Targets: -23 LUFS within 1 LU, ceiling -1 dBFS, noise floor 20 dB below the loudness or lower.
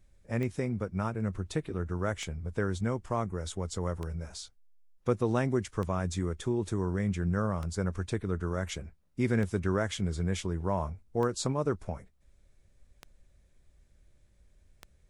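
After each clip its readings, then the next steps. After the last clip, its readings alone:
clicks 9; loudness -32.5 LUFS; peak -14.5 dBFS; loudness target -23.0 LUFS
-> de-click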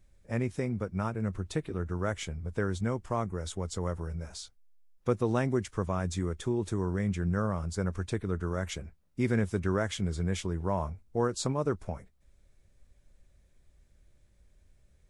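clicks 0; loudness -32.5 LUFS; peak -14.5 dBFS; loudness target -23.0 LUFS
-> gain +9.5 dB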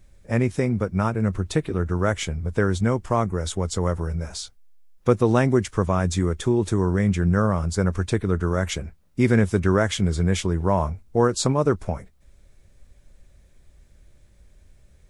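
loudness -23.0 LUFS; peak -5.0 dBFS; noise floor -56 dBFS

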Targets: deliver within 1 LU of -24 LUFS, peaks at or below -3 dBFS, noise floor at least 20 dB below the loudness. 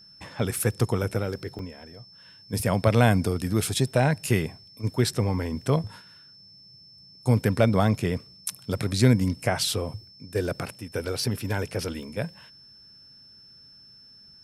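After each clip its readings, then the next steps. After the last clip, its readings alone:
dropouts 2; longest dropout 1.8 ms; steady tone 5300 Hz; tone level -49 dBFS; loudness -26.0 LUFS; peak -4.0 dBFS; loudness target -24.0 LUFS
-> interpolate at 1.59/12.03, 1.8 ms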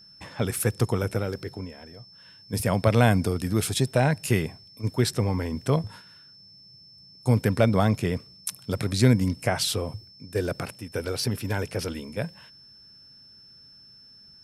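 dropouts 0; steady tone 5300 Hz; tone level -49 dBFS
-> notch 5300 Hz, Q 30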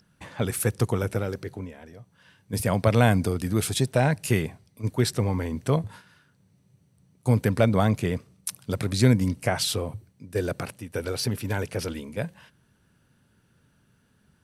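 steady tone none; loudness -26.0 LUFS; peak -4.0 dBFS; loudness target -24.0 LUFS
-> gain +2 dB; limiter -3 dBFS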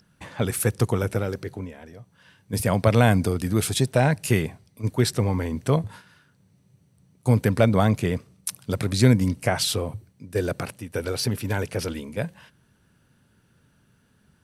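loudness -24.0 LUFS; peak -3.0 dBFS; noise floor -63 dBFS

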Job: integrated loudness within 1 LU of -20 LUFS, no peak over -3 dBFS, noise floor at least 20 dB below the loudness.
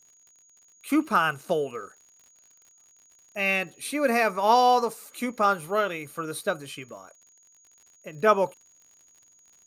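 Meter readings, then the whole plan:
ticks 61/s; steady tone 6700 Hz; tone level -56 dBFS; loudness -25.0 LUFS; peak -6.5 dBFS; loudness target -20.0 LUFS
-> de-click; notch 6700 Hz, Q 30; gain +5 dB; limiter -3 dBFS

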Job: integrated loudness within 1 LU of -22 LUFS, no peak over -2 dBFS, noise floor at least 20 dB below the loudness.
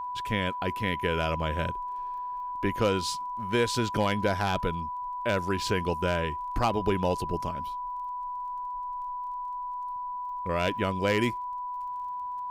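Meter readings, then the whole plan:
ticks 21/s; steady tone 990 Hz; tone level -32 dBFS; loudness -30.0 LUFS; peak -13.5 dBFS; loudness target -22.0 LUFS
-> de-click; notch 990 Hz, Q 30; gain +8 dB

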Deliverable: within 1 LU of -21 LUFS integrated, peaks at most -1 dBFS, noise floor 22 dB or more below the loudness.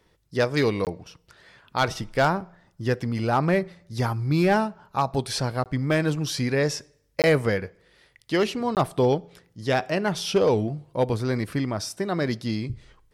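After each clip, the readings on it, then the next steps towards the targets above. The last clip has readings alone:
clipped 0.3%; flat tops at -13.0 dBFS; dropouts 4; longest dropout 18 ms; loudness -25.5 LUFS; peak -13.0 dBFS; loudness target -21.0 LUFS
-> clip repair -13 dBFS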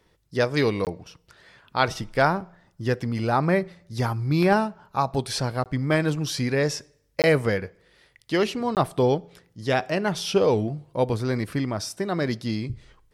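clipped 0.0%; dropouts 4; longest dropout 18 ms
-> interpolate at 0.85/5.64/7.22/8.75, 18 ms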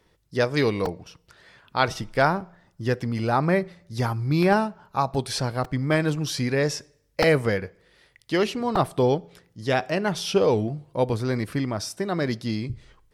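dropouts 0; loudness -25.0 LUFS; peak -5.5 dBFS; loudness target -21.0 LUFS
-> gain +4 dB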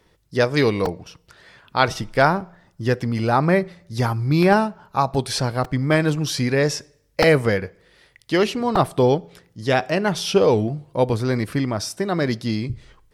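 loudness -21.0 LUFS; peak -1.5 dBFS; noise floor -60 dBFS

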